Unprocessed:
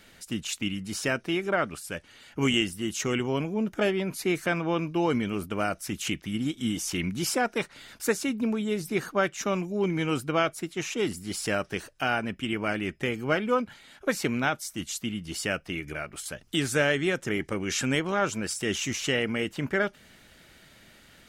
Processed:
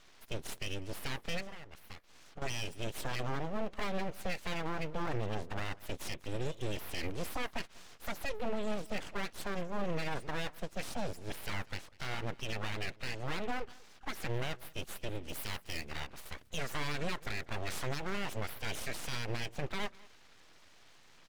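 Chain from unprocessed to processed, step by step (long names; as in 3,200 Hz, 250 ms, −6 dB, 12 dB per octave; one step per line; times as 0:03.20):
spectral magnitudes quantised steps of 30 dB
brickwall limiter −22 dBFS, peak gain reduction 10 dB
0:01.43–0:02.42: downward compressor 10 to 1, threshold −40 dBFS, peak gain reduction 13 dB
high-frequency loss of the air 80 metres
full-wave rectification
0:15.28–0:15.87: high-shelf EQ 11,000 Hz +11 dB
single-tap delay 195 ms −23 dB
level −2.5 dB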